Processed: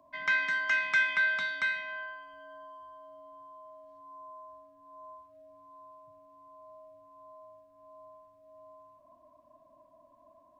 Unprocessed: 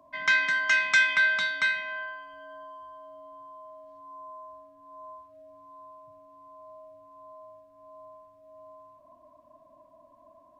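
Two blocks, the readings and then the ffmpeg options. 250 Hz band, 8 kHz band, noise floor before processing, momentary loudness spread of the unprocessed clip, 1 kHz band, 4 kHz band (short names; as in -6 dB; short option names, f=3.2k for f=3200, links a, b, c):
-4.0 dB, under -10 dB, -58 dBFS, 16 LU, -4.0 dB, -8.0 dB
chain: -filter_complex "[0:a]acrossover=split=2800[a][b];[b]acompressor=threshold=-39dB:ratio=4:attack=1:release=60[c];[a][c]amix=inputs=2:normalize=0,volume=-4dB"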